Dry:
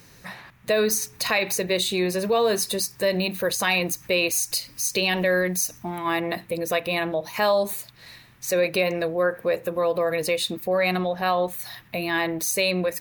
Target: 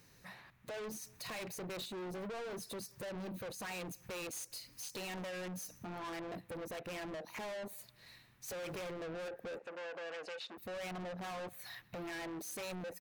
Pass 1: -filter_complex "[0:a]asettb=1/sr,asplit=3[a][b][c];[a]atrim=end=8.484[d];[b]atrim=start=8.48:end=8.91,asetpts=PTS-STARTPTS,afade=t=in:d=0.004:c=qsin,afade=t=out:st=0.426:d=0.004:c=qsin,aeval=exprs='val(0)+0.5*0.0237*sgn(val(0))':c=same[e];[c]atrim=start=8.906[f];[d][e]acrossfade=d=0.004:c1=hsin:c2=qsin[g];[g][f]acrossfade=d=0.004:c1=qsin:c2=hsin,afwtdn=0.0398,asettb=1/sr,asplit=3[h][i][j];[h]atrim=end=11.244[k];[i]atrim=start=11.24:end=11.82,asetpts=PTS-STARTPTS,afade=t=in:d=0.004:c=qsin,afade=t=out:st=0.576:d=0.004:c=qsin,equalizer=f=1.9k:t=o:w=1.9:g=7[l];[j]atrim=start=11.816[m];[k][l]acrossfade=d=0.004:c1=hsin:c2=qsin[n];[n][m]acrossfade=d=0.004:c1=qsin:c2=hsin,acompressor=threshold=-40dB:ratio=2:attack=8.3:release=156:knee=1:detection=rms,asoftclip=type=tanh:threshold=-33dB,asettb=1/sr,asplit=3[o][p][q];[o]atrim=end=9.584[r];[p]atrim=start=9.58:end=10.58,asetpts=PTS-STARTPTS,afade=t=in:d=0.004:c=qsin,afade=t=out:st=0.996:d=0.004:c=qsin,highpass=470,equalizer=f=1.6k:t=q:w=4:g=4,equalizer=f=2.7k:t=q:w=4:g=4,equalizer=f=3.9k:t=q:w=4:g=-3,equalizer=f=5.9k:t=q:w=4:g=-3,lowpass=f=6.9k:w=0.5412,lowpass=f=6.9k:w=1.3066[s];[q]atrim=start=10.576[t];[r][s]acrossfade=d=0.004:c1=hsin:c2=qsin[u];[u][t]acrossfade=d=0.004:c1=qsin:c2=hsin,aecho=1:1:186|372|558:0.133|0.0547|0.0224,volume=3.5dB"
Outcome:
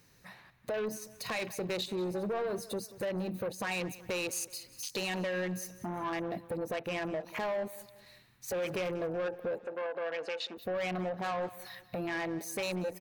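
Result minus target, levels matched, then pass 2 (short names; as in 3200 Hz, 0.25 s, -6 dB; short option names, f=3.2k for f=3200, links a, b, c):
echo-to-direct +11 dB; soft clip: distortion -8 dB
-filter_complex "[0:a]asettb=1/sr,asplit=3[a][b][c];[a]atrim=end=8.484[d];[b]atrim=start=8.48:end=8.91,asetpts=PTS-STARTPTS,afade=t=in:d=0.004:c=qsin,afade=t=out:st=0.426:d=0.004:c=qsin,aeval=exprs='val(0)+0.5*0.0237*sgn(val(0))':c=same[e];[c]atrim=start=8.906[f];[d][e]acrossfade=d=0.004:c1=hsin:c2=qsin[g];[g][f]acrossfade=d=0.004:c1=qsin:c2=hsin,afwtdn=0.0398,asettb=1/sr,asplit=3[h][i][j];[h]atrim=end=11.244[k];[i]atrim=start=11.24:end=11.82,asetpts=PTS-STARTPTS,afade=t=in:d=0.004:c=qsin,afade=t=out:st=0.576:d=0.004:c=qsin,equalizer=f=1.9k:t=o:w=1.9:g=7[l];[j]atrim=start=11.816[m];[k][l]acrossfade=d=0.004:c1=hsin:c2=qsin[n];[n][m]acrossfade=d=0.004:c1=qsin:c2=hsin,acompressor=threshold=-40dB:ratio=2:attack=8.3:release=156:knee=1:detection=rms,asoftclip=type=tanh:threshold=-45dB,asettb=1/sr,asplit=3[o][p][q];[o]atrim=end=9.584[r];[p]atrim=start=9.58:end=10.58,asetpts=PTS-STARTPTS,afade=t=in:d=0.004:c=qsin,afade=t=out:st=0.996:d=0.004:c=qsin,highpass=470,equalizer=f=1.6k:t=q:w=4:g=4,equalizer=f=2.7k:t=q:w=4:g=4,equalizer=f=3.9k:t=q:w=4:g=-3,equalizer=f=5.9k:t=q:w=4:g=-3,lowpass=f=6.9k:w=0.5412,lowpass=f=6.9k:w=1.3066[s];[q]atrim=start=10.576[t];[r][s]acrossfade=d=0.004:c1=hsin:c2=qsin[u];[u][t]acrossfade=d=0.004:c1=qsin:c2=hsin,aecho=1:1:186|372:0.0376|0.0154,volume=3.5dB"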